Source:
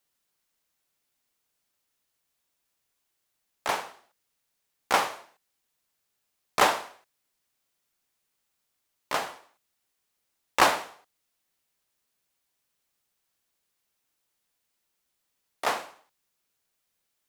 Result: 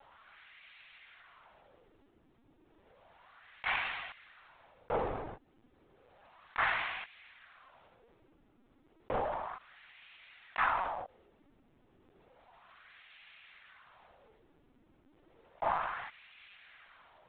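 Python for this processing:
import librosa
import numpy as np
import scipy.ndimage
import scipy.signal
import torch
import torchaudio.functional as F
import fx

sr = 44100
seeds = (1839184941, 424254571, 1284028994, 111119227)

y = fx.wah_lfo(x, sr, hz=0.32, low_hz=230.0, high_hz=2400.0, q=2.3)
y = fx.lpc_vocoder(y, sr, seeds[0], excitation='pitch_kept', order=16)
y = fx.env_flatten(y, sr, amount_pct=70)
y = y * 10.0 ** (-6.5 / 20.0)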